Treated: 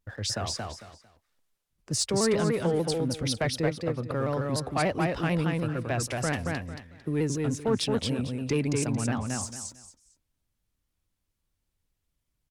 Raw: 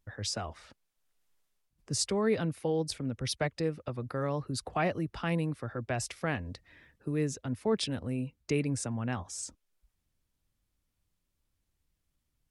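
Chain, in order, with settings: 3.51–4.01 s: treble shelf 4.4 kHz -8.5 dB; waveshaping leveller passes 1; on a send: feedback delay 225 ms, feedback 24%, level -3 dB; on the sum: vibrato with a chosen wave saw down 6.8 Hz, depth 100 cents

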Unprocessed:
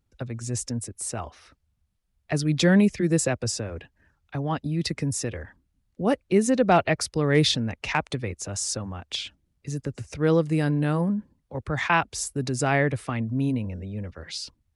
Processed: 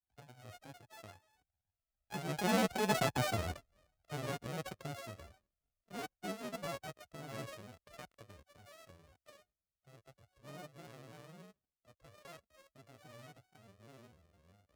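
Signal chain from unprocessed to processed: sorted samples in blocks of 64 samples; Doppler pass-by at 3.38 s, 27 m/s, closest 8.8 m; granulator, spray 14 ms, pitch spread up and down by 3 st; trim -3 dB

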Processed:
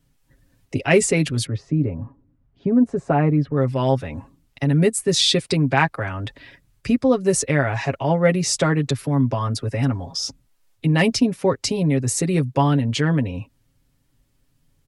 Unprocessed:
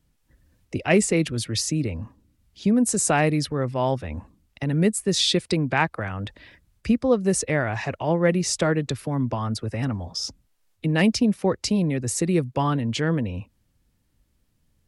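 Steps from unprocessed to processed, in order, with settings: 1.46–3.57 s: low-pass 1.1 kHz 12 dB/octave; comb 7.3 ms, depth 66%; trim +2 dB

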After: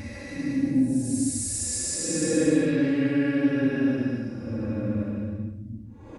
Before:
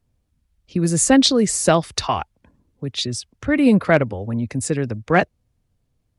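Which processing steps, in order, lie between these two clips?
spectrogram pixelated in time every 50 ms; Paulstretch 11×, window 0.10 s, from 4.49 s; comb 3.6 ms, depth 68%; trim -1 dB

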